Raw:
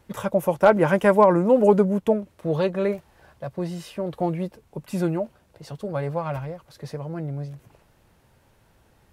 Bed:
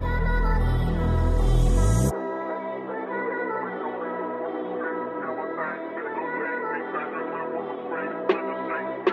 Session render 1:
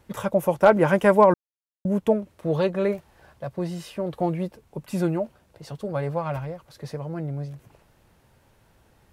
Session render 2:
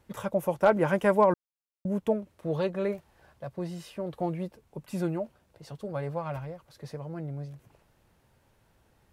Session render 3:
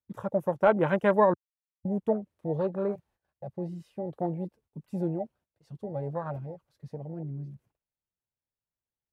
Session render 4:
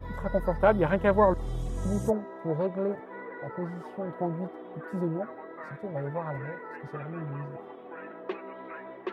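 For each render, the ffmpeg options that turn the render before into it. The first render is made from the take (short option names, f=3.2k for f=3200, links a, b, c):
-filter_complex "[0:a]asplit=3[a][b][c];[a]atrim=end=1.34,asetpts=PTS-STARTPTS,afade=t=out:st=1.336:d=0.004:c=hsin[d];[b]atrim=start=1.34:end=1.85,asetpts=PTS-STARTPTS,volume=0[e];[c]atrim=start=1.85,asetpts=PTS-STARTPTS,afade=t=in:d=0.004:c=hsin[f];[d][e][f]concat=n=3:v=0:a=1"
-af "volume=-6dB"
-af "agate=range=-18dB:threshold=-56dB:ratio=16:detection=peak,afwtdn=0.0224"
-filter_complex "[1:a]volume=-13dB[a];[0:a][a]amix=inputs=2:normalize=0"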